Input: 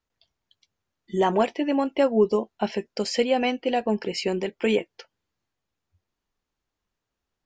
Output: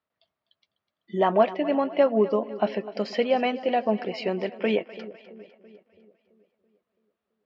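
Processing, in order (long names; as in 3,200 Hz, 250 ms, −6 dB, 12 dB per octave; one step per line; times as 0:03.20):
loudspeaker in its box 120–4,300 Hz, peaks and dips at 200 Hz +3 dB, 630 Hz +10 dB, 1,200 Hz +7 dB, 1,900 Hz +3 dB
echo with a time of its own for lows and highs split 530 Hz, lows 333 ms, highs 251 ms, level −15.5 dB
level −3.5 dB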